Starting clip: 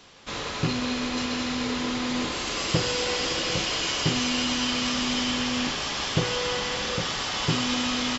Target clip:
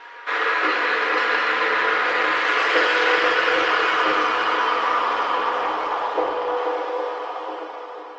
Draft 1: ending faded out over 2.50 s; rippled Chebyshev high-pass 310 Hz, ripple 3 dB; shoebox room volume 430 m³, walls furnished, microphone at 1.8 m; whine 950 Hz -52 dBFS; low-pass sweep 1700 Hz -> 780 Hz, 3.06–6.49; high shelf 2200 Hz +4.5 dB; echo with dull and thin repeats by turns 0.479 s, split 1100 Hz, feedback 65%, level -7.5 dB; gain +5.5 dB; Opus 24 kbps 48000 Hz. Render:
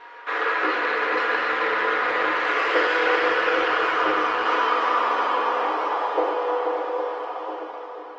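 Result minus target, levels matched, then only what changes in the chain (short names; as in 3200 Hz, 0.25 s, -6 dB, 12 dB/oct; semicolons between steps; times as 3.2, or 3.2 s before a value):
4000 Hz band -3.5 dB
change: high shelf 2200 Hz +13 dB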